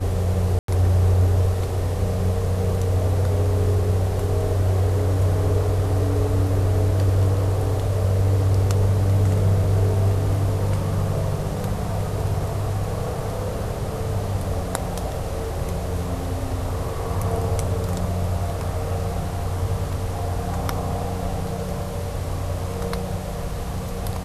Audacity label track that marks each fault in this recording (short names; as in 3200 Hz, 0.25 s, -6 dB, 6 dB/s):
0.590000	0.680000	gap 93 ms